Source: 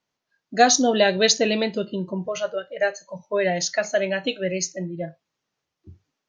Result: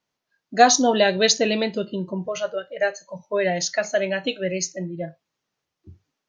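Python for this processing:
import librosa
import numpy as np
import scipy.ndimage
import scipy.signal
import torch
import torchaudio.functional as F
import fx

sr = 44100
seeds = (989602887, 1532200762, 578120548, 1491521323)

y = fx.peak_eq(x, sr, hz=970.0, db=10.0, octaves=0.45, at=(0.56, 0.99))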